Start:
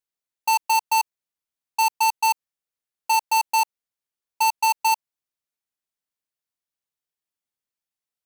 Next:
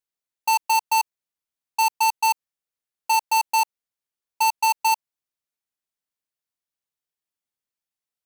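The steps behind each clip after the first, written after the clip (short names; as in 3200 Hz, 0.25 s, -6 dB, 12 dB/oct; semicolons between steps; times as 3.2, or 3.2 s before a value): nothing audible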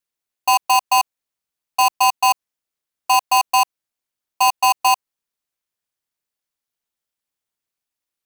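ring modulator 120 Hz; gain +7.5 dB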